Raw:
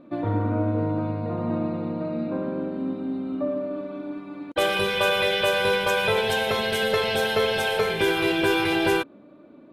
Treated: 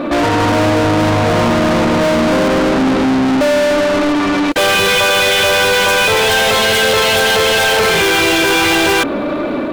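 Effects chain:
parametric band 68 Hz +2.5 dB 1.7 octaves, from 0:00.84 +9 dB
brickwall limiter −19.5 dBFS, peak gain reduction 11 dB
automatic gain control gain up to 3 dB
mid-hump overdrive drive 35 dB, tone 7,800 Hz, clips at −16.5 dBFS
level +9 dB

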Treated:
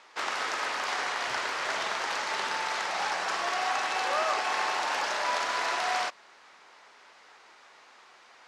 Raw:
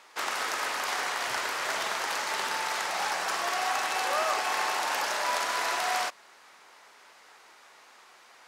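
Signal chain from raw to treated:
low-pass filter 6,100 Hz 12 dB per octave

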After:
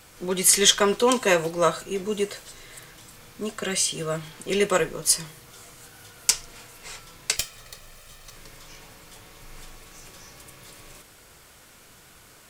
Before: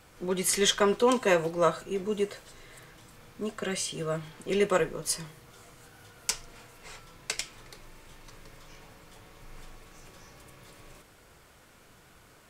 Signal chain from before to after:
0:07.36–0:08.36: lower of the sound and its delayed copy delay 1.6 ms
high-shelf EQ 2,800 Hz +8.5 dB
level +2.5 dB

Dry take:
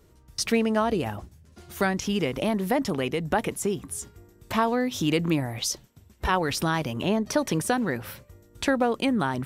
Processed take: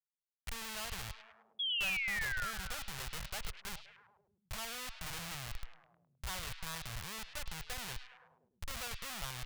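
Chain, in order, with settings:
high-frequency loss of the air 370 metres
comparator with hysteresis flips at −28 dBFS
sound drawn into the spectrogram fall, 0:01.59–0:02.51, 1,300–3,400 Hz −30 dBFS
guitar amp tone stack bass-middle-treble 10-0-10
echo through a band-pass that steps 104 ms, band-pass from 3,400 Hz, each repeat −0.7 octaves, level −7 dB
level −3 dB

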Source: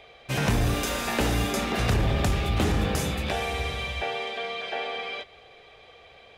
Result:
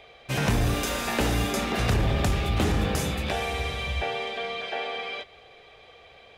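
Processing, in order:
0:03.86–0:04.66: low-shelf EQ 190 Hz +6.5 dB

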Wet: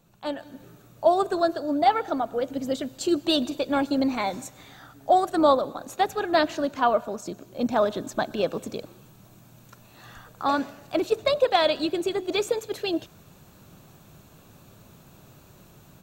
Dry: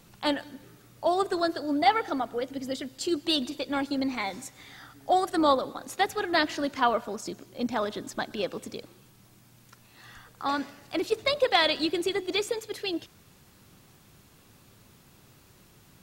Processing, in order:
thirty-one-band graphic EQ 160 Hz +4 dB, 630 Hz +6 dB, 2,000 Hz −8 dB, 3,150 Hz −4 dB, 5,000 Hz −8 dB, 10,000 Hz −9 dB
automatic gain control gain up to 12 dB
level −7 dB

